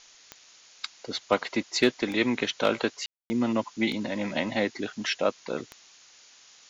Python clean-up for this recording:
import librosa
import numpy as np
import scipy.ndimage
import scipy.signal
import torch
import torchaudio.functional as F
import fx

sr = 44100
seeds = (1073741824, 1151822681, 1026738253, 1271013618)

y = fx.fix_declip(x, sr, threshold_db=-11.5)
y = fx.fix_declick_ar(y, sr, threshold=10.0)
y = fx.fix_ambience(y, sr, seeds[0], print_start_s=5.97, print_end_s=6.47, start_s=3.06, end_s=3.3)
y = fx.noise_reduce(y, sr, print_start_s=5.97, print_end_s=6.47, reduce_db=18.0)